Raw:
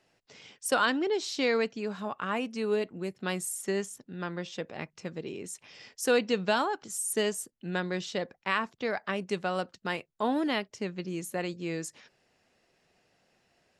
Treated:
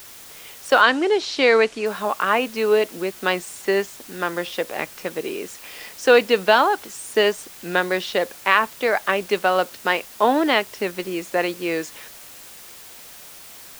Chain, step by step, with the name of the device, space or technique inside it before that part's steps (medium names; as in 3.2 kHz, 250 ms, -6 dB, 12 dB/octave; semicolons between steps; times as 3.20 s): dictaphone (band-pass 380–3800 Hz; level rider gain up to 11.5 dB; wow and flutter 26 cents; white noise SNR 20 dB); 0.81–1.86 s: low-pass 8.6 kHz 24 dB/octave; trim +2 dB